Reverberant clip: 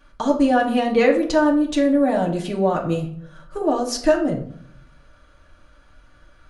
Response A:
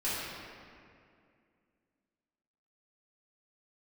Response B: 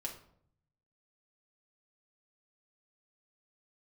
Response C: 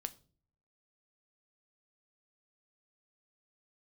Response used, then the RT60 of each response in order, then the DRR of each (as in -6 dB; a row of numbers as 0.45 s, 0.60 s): B; 2.3 s, 0.65 s, 0.45 s; -12.0 dB, -1.5 dB, 10.0 dB